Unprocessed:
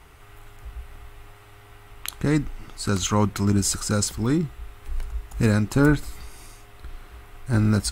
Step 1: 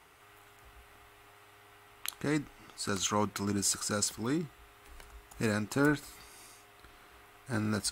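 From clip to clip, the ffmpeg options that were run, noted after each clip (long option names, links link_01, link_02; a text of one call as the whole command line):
ffmpeg -i in.wav -af "highpass=frequency=360:poles=1,volume=-5.5dB" out.wav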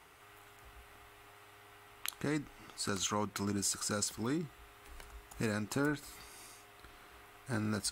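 ffmpeg -i in.wav -af "acompressor=threshold=-34dB:ratio=2" out.wav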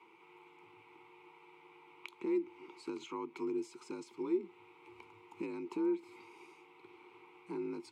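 ffmpeg -i in.wav -filter_complex "[0:a]acompressor=threshold=-40dB:ratio=2.5,asplit=3[link_01][link_02][link_03];[link_01]bandpass=frequency=300:width_type=q:width=8,volume=0dB[link_04];[link_02]bandpass=frequency=870:width_type=q:width=8,volume=-6dB[link_05];[link_03]bandpass=frequency=2240:width_type=q:width=8,volume=-9dB[link_06];[link_04][link_05][link_06]amix=inputs=3:normalize=0,afreqshift=52,volume=12.5dB" out.wav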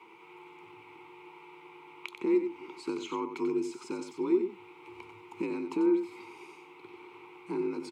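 ffmpeg -i in.wav -af "aecho=1:1:92:0.376,volume=7dB" out.wav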